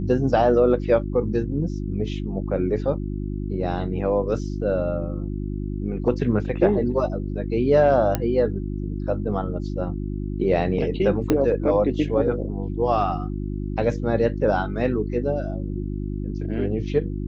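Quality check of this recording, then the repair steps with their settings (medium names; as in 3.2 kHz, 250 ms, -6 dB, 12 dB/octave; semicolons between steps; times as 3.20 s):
hum 50 Hz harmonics 7 -28 dBFS
8.15 s: pop -8 dBFS
11.30 s: pop -7 dBFS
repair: de-click; de-hum 50 Hz, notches 7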